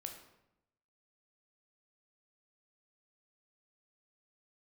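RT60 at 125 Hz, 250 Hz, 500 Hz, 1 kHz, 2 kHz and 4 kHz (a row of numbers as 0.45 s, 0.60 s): 1.1 s, 1.0 s, 0.90 s, 0.80 s, 0.70 s, 0.60 s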